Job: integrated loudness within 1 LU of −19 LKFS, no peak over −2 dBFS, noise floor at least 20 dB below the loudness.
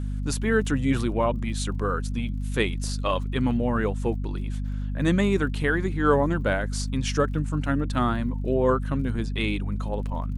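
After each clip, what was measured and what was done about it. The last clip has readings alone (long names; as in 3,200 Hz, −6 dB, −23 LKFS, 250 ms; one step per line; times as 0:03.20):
crackle rate 33 per second; mains hum 50 Hz; hum harmonics up to 250 Hz; level of the hum −26 dBFS; integrated loudness −26.0 LKFS; sample peak −8.0 dBFS; target loudness −19.0 LKFS
→ click removal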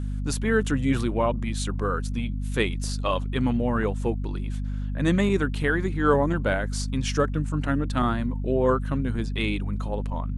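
crackle rate 0.096 per second; mains hum 50 Hz; hum harmonics up to 250 Hz; level of the hum −26 dBFS
→ hum removal 50 Hz, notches 5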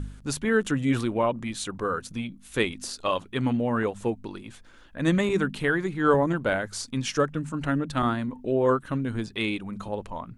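mains hum none found; integrated loudness −27.0 LKFS; sample peak −8.5 dBFS; target loudness −19.0 LKFS
→ level +8 dB
brickwall limiter −2 dBFS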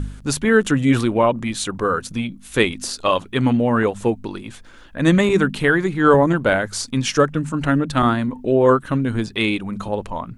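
integrated loudness −19.0 LKFS; sample peak −2.0 dBFS; background noise floor −42 dBFS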